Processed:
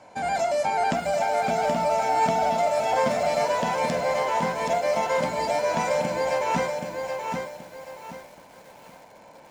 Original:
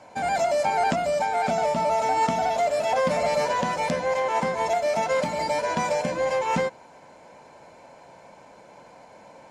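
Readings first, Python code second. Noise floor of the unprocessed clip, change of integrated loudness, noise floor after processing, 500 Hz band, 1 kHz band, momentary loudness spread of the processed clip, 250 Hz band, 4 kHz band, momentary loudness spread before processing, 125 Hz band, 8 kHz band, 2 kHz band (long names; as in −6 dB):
−50 dBFS, −0.5 dB, −50 dBFS, 0.0 dB, 0.0 dB, 10 LU, 0.0 dB, 0.0 dB, 3 LU, 0.0 dB, 0.0 dB, 0.0 dB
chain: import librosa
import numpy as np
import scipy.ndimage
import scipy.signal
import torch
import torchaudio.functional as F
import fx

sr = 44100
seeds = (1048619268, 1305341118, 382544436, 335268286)

y = fx.doubler(x, sr, ms=47.0, db=-13.0)
y = fx.echo_crushed(y, sr, ms=776, feedback_pct=35, bits=8, wet_db=-4.5)
y = y * librosa.db_to_amplitude(-1.5)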